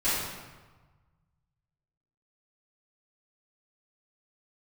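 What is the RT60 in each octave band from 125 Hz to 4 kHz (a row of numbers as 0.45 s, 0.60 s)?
2.2 s, 1.4 s, 1.3 s, 1.4 s, 1.1 s, 0.90 s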